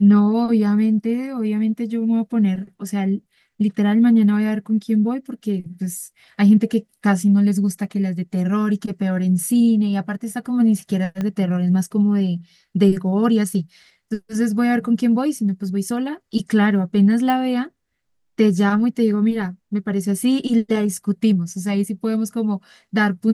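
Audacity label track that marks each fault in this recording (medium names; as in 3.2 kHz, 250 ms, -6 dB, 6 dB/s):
11.210000	11.210000	pop -14 dBFS
17.300000	17.300000	pop -10 dBFS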